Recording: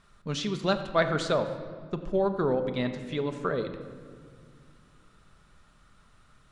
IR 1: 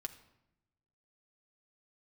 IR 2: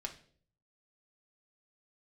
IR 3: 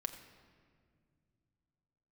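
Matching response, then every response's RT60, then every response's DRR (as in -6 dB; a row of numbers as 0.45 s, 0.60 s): 3; 0.85 s, 0.50 s, no single decay rate; 5.0 dB, 1.5 dB, 7.0 dB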